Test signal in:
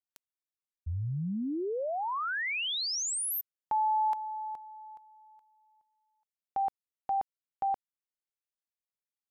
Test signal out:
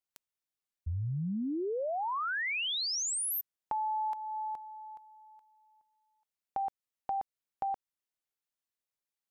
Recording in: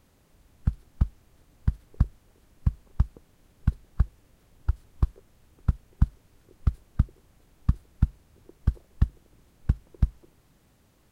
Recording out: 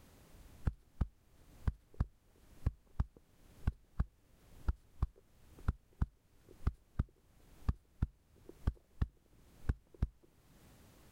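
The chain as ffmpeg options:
-af "acompressor=threshold=0.0251:ratio=6:attack=13:release=490:knee=1:detection=rms,volume=1.12"

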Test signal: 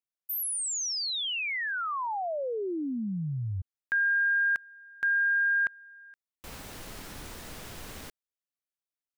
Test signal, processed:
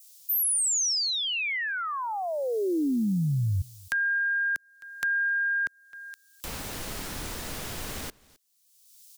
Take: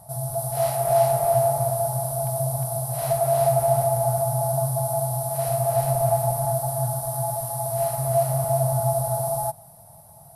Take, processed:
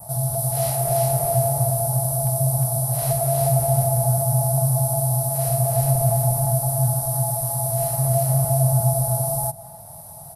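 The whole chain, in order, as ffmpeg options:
-filter_complex "[0:a]asplit=2[s0][s1];[s1]adelay=262.4,volume=0.0631,highshelf=f=4000:g=-5.9[s2];[s0][s2]amix=inputs=2:normalize=0,acrossover=split=370|3900[s3][s4][s5];[s5]acompressor=mode=upward:threshold=0.01:ratio=4:attack=2.6:release=656:knee=2.83:detection=peak[s6];[s3][s4][s6]amix=inputs=3:normalize=0,adynamicequalizer=threshold=0.00562:dfrequency=3300:dqfactor=1.2:tfrequency=3300:tqfactor=1.2:attack=5:release=100:ratio=0.375:range=2.5:mode=cutabove:tftype=bell,acrossover=split=420|2500[s7][s8][s9];[s8]acompressor=threshold=0.00708:ratio=2:attack=5.2:release=202:knee=2.83:detection=peak[s10];[s7][s10][s9]amix=inputs=3:normalize=0,volume=2.11"

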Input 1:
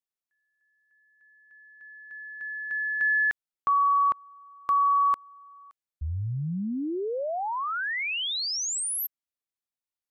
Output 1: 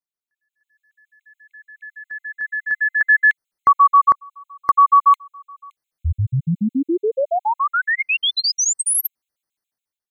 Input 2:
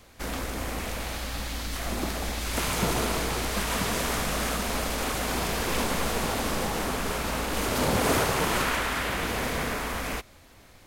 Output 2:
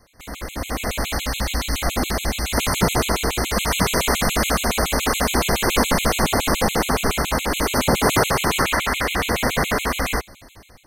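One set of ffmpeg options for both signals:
-af "dynaudnorm=f=270:g=5:m=4.22,afftfilt=real='re*gt(sin(2*PI*7.1*pts/sr)*(1-2*mod(floor(b*sr/1024/2100),2)),0)':imag='im*gt(sin(2*PI*7.1*pts/sr)*(1-2*mod(floor(b*sr/1024/2100),2)),0)':win_size=1024:overlap=0.75"

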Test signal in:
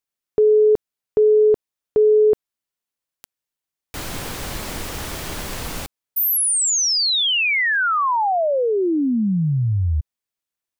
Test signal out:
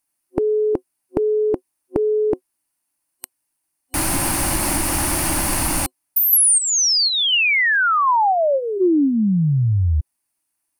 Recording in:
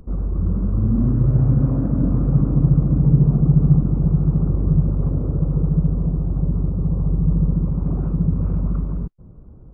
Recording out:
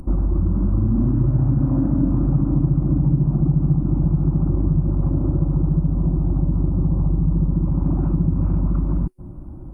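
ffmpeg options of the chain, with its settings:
-af "superequalizer=6b=2:7b=0.282:9b=1.58:13b=0.501:16b=3.55,acompressor=threshold=0.0708:ratio=4:attack=18:release=380:knee=1:detection=peak,volume=2.24"

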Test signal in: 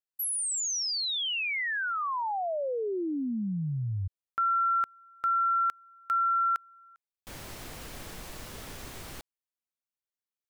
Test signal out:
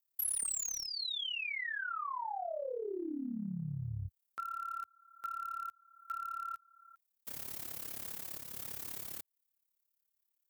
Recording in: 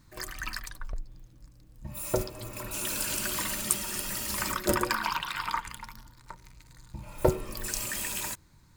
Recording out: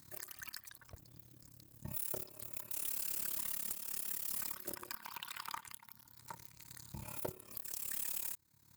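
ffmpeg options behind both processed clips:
-filter_complex "[0:a]highpass=f=79:w=0.5412,highpass=f=79:w=1.3066,aemphasis=mode=production:type=50fm,tremolo=f=35:d=0.824,aeval=exprs='(tanh(1.78*val(0)+0.25)-tanh(0.25))/1.78':c=same,asplit=2[s0][s1];[s1]acrusher=bits=3:mix=0:aa=0.000001,volume=0.447[s2];[s0][s2]amix=inputs=2:normalize=0,acompressor=threshold=0.0178:ratio=4:attack=0.22:release=363:knee=1:detection=rms,volume=1.12"

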